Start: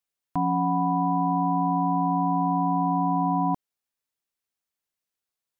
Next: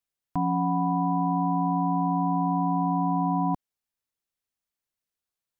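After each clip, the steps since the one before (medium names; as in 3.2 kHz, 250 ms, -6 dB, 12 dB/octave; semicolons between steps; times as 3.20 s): bass shelf 150 Hz +6.5 dB; trim -2.5 dB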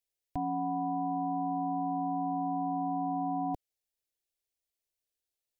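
static phaser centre 480 Hz, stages 4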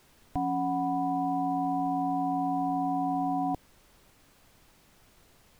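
added noise pink -64 dBFS; trim +3.5 dB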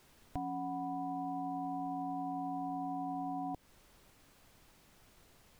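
compression 3:1, threshold -35 dBFS, peak gain reduction 7 dB; trim -3 dB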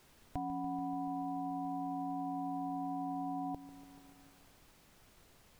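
bit-crushed delay 144 ms, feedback 80%, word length 10-bit, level -14.5 dB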